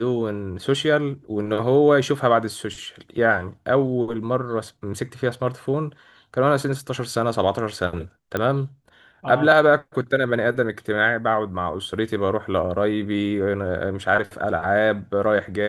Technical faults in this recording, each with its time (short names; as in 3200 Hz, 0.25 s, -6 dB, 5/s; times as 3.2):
8.37 pop -11 dBFS